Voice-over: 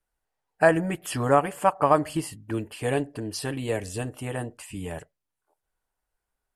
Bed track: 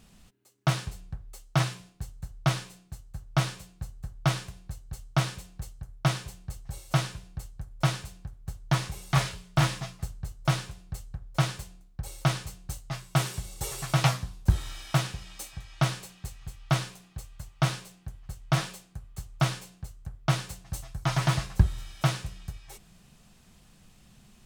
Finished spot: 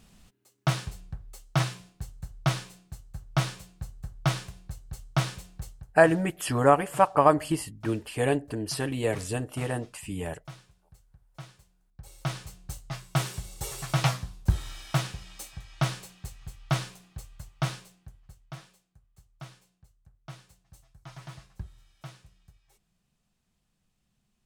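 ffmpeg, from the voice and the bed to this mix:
-filter_complex "[0:a]adelay=5350,volume=1.06[s0];[1:a]volume=7.08,afade=t=out:st=5.7:d=0.29:silence=0.11885,afade=t=in:st=11.75:d=1.01:silence=0.133352,afade=t=out:st=17.33:d=1.25:silence=0.133352[s1];[s0][s1]amix=inputs=2:normalize=0"

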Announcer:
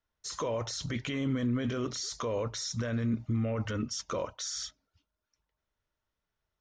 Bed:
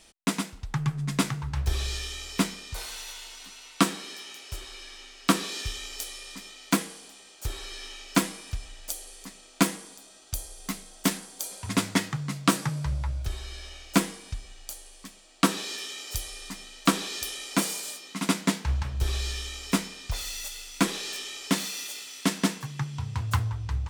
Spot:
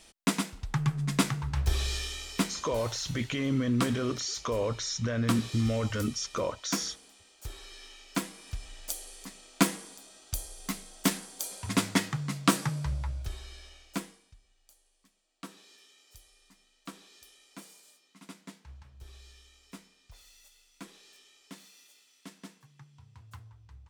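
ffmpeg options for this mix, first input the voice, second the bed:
-filter_complex "[0:a]adelay=2250,volume=1.33[s0];[1:a]volume=2.11,afade=t=out:st=2:d=0.87:silence=0.398107,afade=t=in:st=8.33:d=0.44:silence=0.446684,afade=t=out:st=12.62:d=1.7:silence=0.0891251[s1];[s0][s1]amix=inputs=2:normalize=0"

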